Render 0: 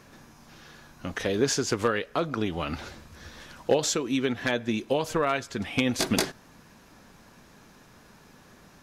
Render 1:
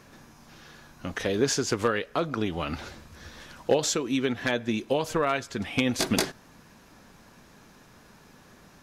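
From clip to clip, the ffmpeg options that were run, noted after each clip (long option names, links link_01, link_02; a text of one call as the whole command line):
ffmpeg -i in.wav -af anull out.wav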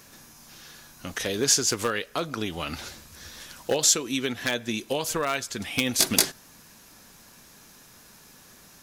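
ffmpeg -i in.wav -af "asoftclip=type=hard:threshold=-13.5dB,crystalizer=i=4:c=0,volume=-3dB" out.wav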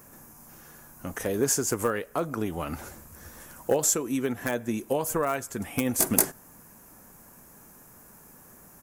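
ffmpeg -i in.wav -af "firequalizer=gain_entry='entry(890,0);entry(3800,-20);entry(7500,-3);entry(15000,4)':delay=0.05:min_phase=1,volume=1.5dB" out.wav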